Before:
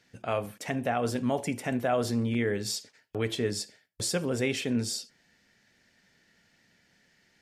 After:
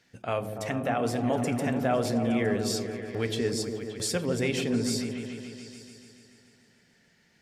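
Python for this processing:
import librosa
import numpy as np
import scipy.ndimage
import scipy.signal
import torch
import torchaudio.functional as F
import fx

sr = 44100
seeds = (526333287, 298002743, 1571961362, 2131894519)

y = fx.quant_dither(x, sr, seeds[0], bits=12, dither='none', at=(3.47, 4.18))
y = fx.echo_opening(y, sr, ms=144, hz=400, octaves=1, feedback_pct=70, wet_db=-3)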